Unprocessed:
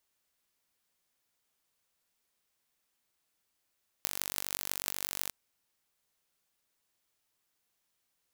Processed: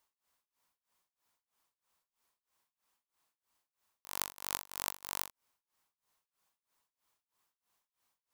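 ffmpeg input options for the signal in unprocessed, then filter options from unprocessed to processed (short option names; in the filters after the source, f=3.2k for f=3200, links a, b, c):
-f lavfi -i "aevalsrc='0.708*eq(mod(n,917),0)*(0.5+0.5*eq(mod(n,7336),0))':d=1.26:s=44100"
-af "equalizer=f=1k:w=1.9:g=10,tremolo=f=3.1:d=0.96"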